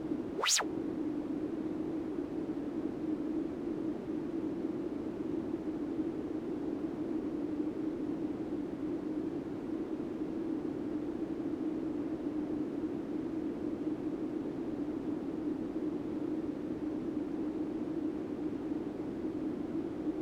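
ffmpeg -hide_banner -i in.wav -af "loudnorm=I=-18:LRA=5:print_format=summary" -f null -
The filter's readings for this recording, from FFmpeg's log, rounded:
Input Integrated:    -37.1 LUFS
Input True Peak:     -16.2 dBTP
Input LRA:             0.4 LU
Input Threshold:     -47.1 LUFS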